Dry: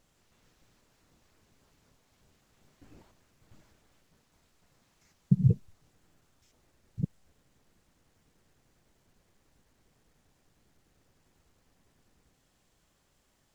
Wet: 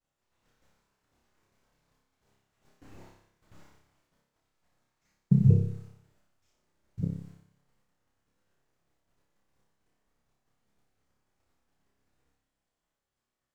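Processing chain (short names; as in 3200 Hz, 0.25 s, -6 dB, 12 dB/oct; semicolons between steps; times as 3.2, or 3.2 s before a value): expander -57 dBFS; bell 1100 Hz +5 dB 2.4 oct; on a send: flutter echo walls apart 5.1 m, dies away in 0.67 s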